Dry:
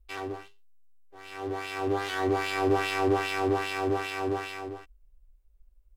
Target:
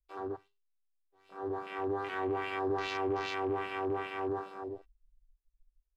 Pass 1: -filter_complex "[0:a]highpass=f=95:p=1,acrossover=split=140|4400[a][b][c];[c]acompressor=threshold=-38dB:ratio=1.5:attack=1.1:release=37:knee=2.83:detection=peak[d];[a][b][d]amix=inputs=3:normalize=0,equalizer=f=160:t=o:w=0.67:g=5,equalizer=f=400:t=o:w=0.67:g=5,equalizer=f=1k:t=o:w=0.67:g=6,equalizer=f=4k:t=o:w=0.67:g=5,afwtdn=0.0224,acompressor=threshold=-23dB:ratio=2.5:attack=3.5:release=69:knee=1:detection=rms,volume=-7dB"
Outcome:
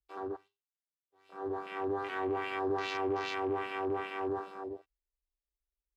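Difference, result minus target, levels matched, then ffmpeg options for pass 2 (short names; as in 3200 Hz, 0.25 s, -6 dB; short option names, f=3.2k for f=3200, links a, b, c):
125 Hz band -3.0 dB
-filter_complex "[0:a]acrossover=split=140|4400[a][b][c];[c]acompressor=threshold=-38dB:ratio=1.5:attack=1.1:release=37:knee=2.83:detection=peak[d];[a][b][d]amix=inputs=3:normalize=0,equalizer=f=160:t=o:w=0.67:g=5,equalizer=f=400:t=o:w=0.67:g=5,equalizer=f=1k:t=o:w=0.67:g=6,equalizer=f=4k:t=o:w=0.67:g=5,afwtdn=0.0224,acompressor=threshold=-23dB:ratio=2.5:attack=3.5:release=69:knee=1:detection=rms,volume=-7dB"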